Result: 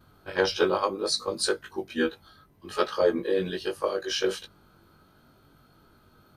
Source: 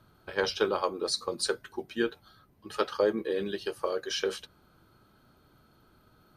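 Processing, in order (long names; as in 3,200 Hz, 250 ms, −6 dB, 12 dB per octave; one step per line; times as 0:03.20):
every overlapping window played backwards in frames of 42 ms
level +6.5 dB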